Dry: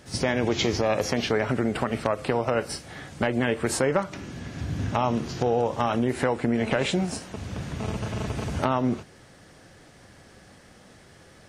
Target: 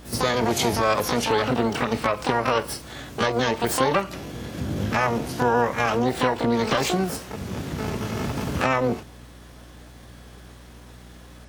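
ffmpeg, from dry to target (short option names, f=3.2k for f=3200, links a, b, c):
-filter_complex "[0:a]asplit=2[a][b];[b]asetrate=88200,aresample=44100,atempo=0.5,volume=-1dB[c];[a][c]amix=inputs=2:normalize=0,aeval=exprs='val(0)+0.00562*(sin(2*PI*60*n/s)+sin(2*PI*2*60*n/s)/2+sin(2*PI*3*60*n/s)/3+sin(2*PI*4*60*n/s)/4+sin(2*PI*5*60*n/s)/5)':c=same"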